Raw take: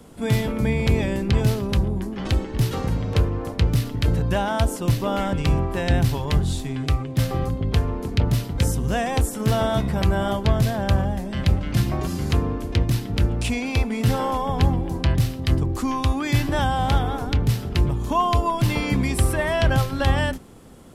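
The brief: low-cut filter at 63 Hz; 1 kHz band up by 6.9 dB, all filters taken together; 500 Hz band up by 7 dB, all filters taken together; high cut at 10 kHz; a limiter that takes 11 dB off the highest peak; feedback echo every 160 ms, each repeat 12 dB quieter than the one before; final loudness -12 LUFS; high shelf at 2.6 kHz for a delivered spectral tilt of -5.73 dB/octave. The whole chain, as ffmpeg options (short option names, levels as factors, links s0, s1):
-af "highpass=63,lowpass=10000,equalizer=f=500:t=o:g=7,equalizer=f=1000:t=o:g=7.5,highshelf=f=2600:g=-9,alimiter=limit=0.178:level=0:latency=1,aecho=1:1:160|320|480:0.251|0.0628|0.0157,volume=3.98"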